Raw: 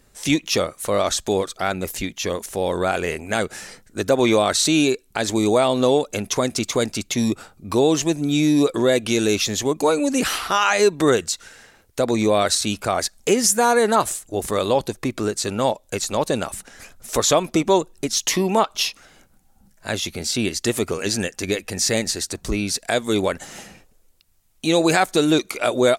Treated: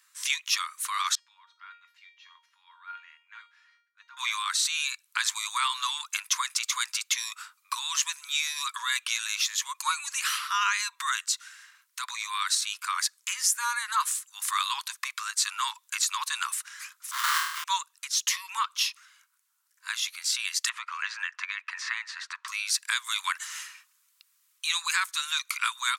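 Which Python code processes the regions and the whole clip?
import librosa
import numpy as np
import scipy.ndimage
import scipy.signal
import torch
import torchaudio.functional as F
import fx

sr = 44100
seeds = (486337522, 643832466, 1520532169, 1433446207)

y = fx.chain(x, sr, fx.air_absorb(metres=300.0),
    fx.comb_fb(f0_hz=470.0, decay_s=0.41, harmonics='all', damping=0.0, mix_pct=90), at=(1.15, 4.17))
y = fx.chain(y, sr, fx.highpass(hz=1000.0, slope=6),
    fx.sample_hold(seeds[0], rate_hz=2500.0, jitter_pct=20),
    fx.room_flutter(wall_m=4.3, rt60_s=0.64), at=(17.11, 17.64))
y = fx.chain(y, sr, fx.lowpass(hz=1800.0, slope=12),
    fx.band_squash(depth_pct=100), at=(20.69, 22.48))
y = scipy.signal.sosfilt(scipy.signal.butter(16, 990.0, 'highpass', fs=sr, output='sos'), y)
y = fx.rider(y, sr, range_db=4, speed_s=0.5)
y = y * 10.0 ** (-2.5 / 20.0)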